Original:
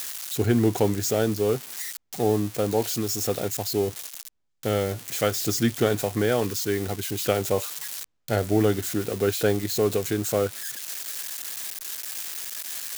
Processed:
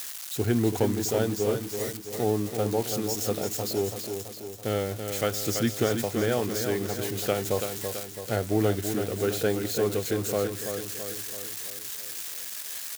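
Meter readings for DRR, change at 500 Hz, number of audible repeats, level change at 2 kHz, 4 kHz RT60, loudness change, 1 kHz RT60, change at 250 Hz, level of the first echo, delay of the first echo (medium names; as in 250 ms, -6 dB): no reverb, -2.5 dB, 6, -2.5 dB, no reverb, -2.5 dB, no reverb, -2.5 dB, -7.0 dB, 332 ms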